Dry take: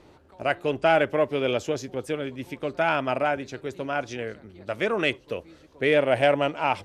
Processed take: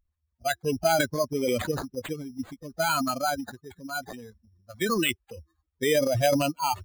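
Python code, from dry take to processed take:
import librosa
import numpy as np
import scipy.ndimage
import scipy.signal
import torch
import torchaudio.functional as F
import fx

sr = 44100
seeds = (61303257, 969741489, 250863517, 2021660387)

p1 = fx.bin_expand(x, sr, power=3.0)
p2 = fx.over_compress(p1, sr, threshold_db=-32.0, ratio=-0.5)
p3 = p1 + (p2 * 10.0 ** (-0.5 / 20.0))
p4 = fx.transient(p3, sr, attack_db=1, sustain_db=8)
y = np.repeat(p4[::8], 8)[:len(p4)]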